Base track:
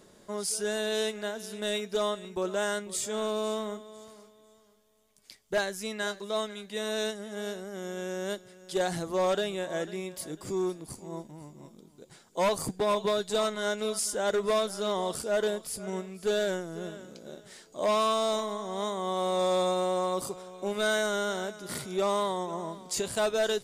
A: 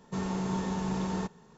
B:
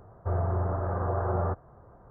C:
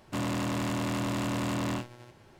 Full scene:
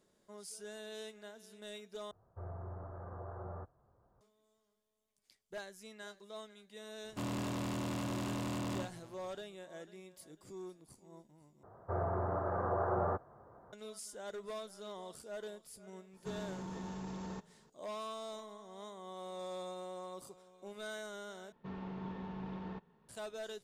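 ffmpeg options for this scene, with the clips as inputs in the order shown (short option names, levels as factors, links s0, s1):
-filter_complex "[2:a]asplit=2[s0][s1];[1:a]asplit=2[s2][s3];[0:a]volume=0.141[s4];[3:a]equalizer=f=1800:t=o:w=1:g=-4[s5];[s1]highpass=f=260:p=1[s6];[s2]alimiter=level_in=1.41:limit=0.0631:level=0:latency=1:release=22,volume=0.708[s7];[s3]lowpass=f=3400:w=0.5412,lowpass=f=3400:w=1.3066[s8];[s4]asplit=4[s9][s10][s11][s12];[s9]atrim=end=2.114[s13];[s0]atrim=end=2.1,asetpts=PTS-STARTPTS,volume=0.133[s14];[s10]atrim=start=4.206:end=11.634[s15];[s6]atrim=end=2.1,asetpts=PTS-STARTPTS,volume=0.794[s16];[s11]atrim=start=13.726:end=21.524[s17];[s8]atrim=end=1.57,asetpts=PTS-STARTPTS,volume=0.251[s18];[s12]atrim=start=23.086[s19];[s5]atrim=end=2.39,asetpts=PTS-STARTPTS,volume=0.447,afade=t=in:d=0.004:c=hsin,afade=t=out:st=2.386:d=0.004:c=hsin,adelay=7040[s20];[s7]atrim=end=1.57,asetpts=PTS-STARTPTS,volume=0.335,afade=t=in:d=0.004:c=hsin,afade=t=out:st=1.566:d=0.004:c=hsin,adelay=16130[s21];[s13][s14]acrossfade=d=0.004:c1=hsin:c2=hsin[s22];[s22][s15]acrossfade=d=0.004:c1=hsin:c2=hsin[s23];[s23][s16]acrossfade=d=0.004:c1=hsin:c2=hsin[s24];[s24][s17]acrossfade=d=0.004:c1=hsin:c2=hsin[s25];[s25][s18]acrossfade=d=0.004:c1=hsin:c2=hsin[s26];[s26][s19]acrossfade=d=0.004:c1=hsin:c2=hsin[s27];[s27][s20][s21]amix=inputs=3:normalize=0"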